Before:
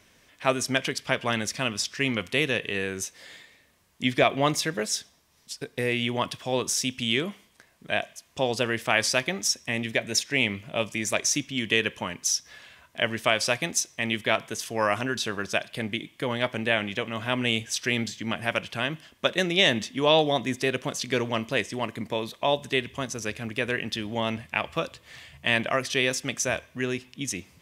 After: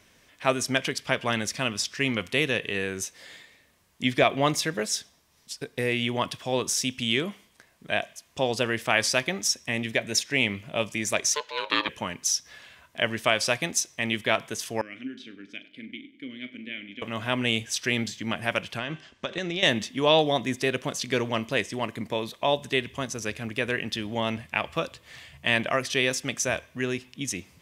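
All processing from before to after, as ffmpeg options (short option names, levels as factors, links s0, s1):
-filter_complex "[0:a]asettb=1/sr,asplit=3[s0][s1][s2];[s0]atrim=end=11.344[s3];[s1]atrim=start=11.34:end=11.89,asetpts=PTS-STARTPTS,afade=t=in:d=0.004:c=qsin,afade=t=out:st=0.546:d=0.004:c=qsin,highshelf=f=5800:t=q:w=1.5:g=-7,aeval=exprs='val(0)*sin(2*PI*740*n/s)':c=same[s4];[s2]atrim=start=11.886[s5];[s3][s4]acrossfade=d=0.004:c1=hsin:c2=qsin[s6];[s6][s5]acrossfade=d=0.004:c1=qsin:c2=hsin,asettb=1/sr,asplit=3[s7][s8][s9];[s7]atrim=end=14.814[s10];[s8]atrim=start=14.81:end=17.02,asetpts=PTS-STARTPTS,afade=t=in:d=0.004:c=qsin,afade=t=out:st=2.206:d=0.004:c=qsin,asplit=3[s11][s12][s13];[s11]bandpass=f=270:t=q:w=8,volume=1[s14];[s12]bandpass=f=2290:t=q:w=8,volume=0.501[s15];[s13]bandpass=f=3010:t=q:w=8,volume=0.355[s16];[s14][s15][s16]amix=inputs=3:normalize=0,asplit=2[s17][s18];[s18]adelay=40,volume=0.251[s19];[s17][s19]amix=inputs=2:normalize=0,atrim=end_sample=97461,asplit=2[s20][s21];[s21]adelay=98,lowpass=f=1900:p=1,volume=0.188,asplit=2[s22][s23];[s23]adelay=98,lowpass=f=1900:p=1,volume=0.55,asplit=2[s24][s25];[s25]adelay=98,lowpass=f=1900:p=1,volume=0.55,asplit=2[s26][s27];[s27]adelay=98,lowpass=f=1900:p=1,volume=0.55,asplit=2[s28][s29];[s29]adelay=98,lowpass=f=1900:p=1,volume=0.55[s30];[s20][s22][s24][s26][s28][s30]amix=inputs=6:normalize=0,atrim=end_sample=97461[s31];[s9]atrim=start=17.016[s32];[s10][s31]acrossfade=d=0.004:c1=hsin:c2=qsin[s33];[s33][s32]acrossfade=d=0.004:c1=qsin:c2=hsin,asettb=1/sr,asplit=3[s34][s35][s36];[s34]atrim=end=18.784[s37];[s35]atrim=start=18.78:end=19.63,asetpts=PTS-STARTPTS,afade=t=in:d=0.004:c=qsin,afade=t=out:st=0.846:d=0.004:c=qsin,lowpass=f=7300:w=0.5412,lowpass=f=7300:w=1.3066,bandreject=f=387.5:t=h:w=4,bandreject=f=775:t=h:w=4,bandreject=f=1162.5:t=h:w=4,bandreject=f=1550:t=h:w=4,bandreject=f=1937.5:t=h:w=4,bandreject=f=2325:t=h:w=4,bandreject=f=2712.5:t=h:w=4,bandreject=f=3100:t=h:w=4,bandreject=f=3487.5:t=h:w=4,bandreject=f=3875:t=h:w=4,bandreject=f=4262.5:t=h:w=4,bandreject=f=4650:t=h:w=4,bandreject=f=5037.5:t=h:w=4,bandreject=f=5425:t=h:w=4,bandreject=f=5812.5:t=h:w=4,bandreject=f=6200:t=h:w=4,bandreject=f=6587.5:t=h:w=4,bandreject=f=6975:t=h:w=4,bandreject=f=7362.5:t=h:w=4,bandreject=f=7750:t=h:w=4,bandreject=f=8137.5:t=h:w=4,bandreject=f=8525:t=h:w=4,bandreject=f=8912.5:t=h:w=4,bandreject=f=9300:t=h:w=4,bandreject=f=9687.5:t=h:w=4,bandreject=f=10075:t=h:w=4,bandreject=f=10462.5:t=h:w=4,bandreject=f=10850:t=h:w=4,bandreject=f=11237.5:t=h:w=4,bandreject=f=11625:t=h:w=4,acompressor=threshold=0.0501:ratio=6:attack=3.2:release=140:knee=1:detection=peak[s38];[s36]atrim=start=19.626[s39];[s37][s38]acrossfade=d=0.004:c1=hsin:c2=qsin[s40];[s40][s39]acrossfade=d=0.004:c1=qsin:c2=hsin"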